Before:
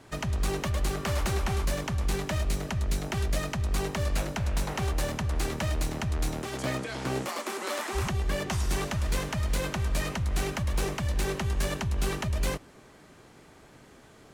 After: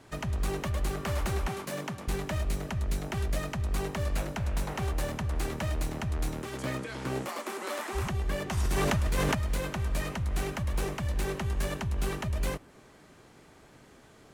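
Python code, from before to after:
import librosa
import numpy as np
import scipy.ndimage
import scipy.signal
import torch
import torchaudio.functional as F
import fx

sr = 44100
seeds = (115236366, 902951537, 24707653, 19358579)

y = fx.dynamic_eq(x, sr, hz=5200.0, q=0.72, threshold_db=-52.0, ratio=4.0, max_db=-4)
y = fx.highpass(y, sr, hz=140.0, slope=24, at=(1.48, 2.08))
y = fx.peak_eq(y, sr, hz=710.0, db=-8.0, octaves=0.23, at=(6.29, 7.12))
y = fx.env_flatten(y, sr, amount_pct=100, at=(8.57, 9.35))
y = F.gain(torch.from_numpy(y), -2.0).numpy()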